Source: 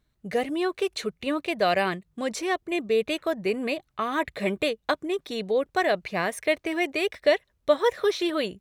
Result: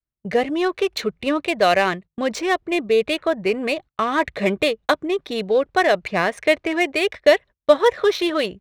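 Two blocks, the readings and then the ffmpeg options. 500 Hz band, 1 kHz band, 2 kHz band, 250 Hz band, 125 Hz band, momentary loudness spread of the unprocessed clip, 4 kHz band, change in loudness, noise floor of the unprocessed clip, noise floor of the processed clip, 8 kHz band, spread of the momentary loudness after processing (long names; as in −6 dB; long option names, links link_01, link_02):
+6.5 dB, +6.5 dB, +6.5 dB, +5.5 dB, +5.0 dB, 6 LU, +6.0 dB, +6.5 dB, −73 dBFS, below −85 dBFS, +4.0 dB, 7 LU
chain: -af "adynamicequalizer=threshold=0.0141:dfrequency=230:dqfactor=0.9:tfrequency=230:tqfactor=0.9:attack=5:release=100:ratio=0.375:range=2.5:mode=cutabove:tftype=bell,agate=range=-26dB:threshold=-42dB:ratio=16:detection=peak,adynamicsmooth=sensitivity=6:basefreq=3200,volume=7dB"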